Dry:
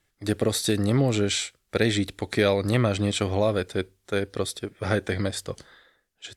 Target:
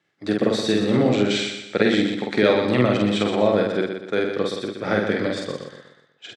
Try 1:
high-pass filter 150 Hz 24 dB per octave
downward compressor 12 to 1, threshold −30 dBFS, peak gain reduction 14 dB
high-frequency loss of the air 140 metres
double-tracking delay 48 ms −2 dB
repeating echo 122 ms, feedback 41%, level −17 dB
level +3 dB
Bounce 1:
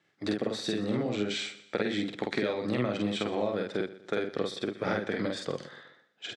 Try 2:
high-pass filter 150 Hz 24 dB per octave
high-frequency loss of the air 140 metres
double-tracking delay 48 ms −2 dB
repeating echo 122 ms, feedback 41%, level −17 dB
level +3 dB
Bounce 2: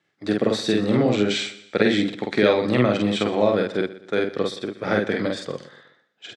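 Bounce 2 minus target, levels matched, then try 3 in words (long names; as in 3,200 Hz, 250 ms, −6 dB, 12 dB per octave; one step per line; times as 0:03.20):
echo-to-direct −10 dB
high-pass filter 150 Hz 24 dB per octave
high-frequency loss of the air 140 metres
double-tracking delay 48 ms −2 dB
repeating echo 122 ms, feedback 41%, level −7 dB
level +3 dB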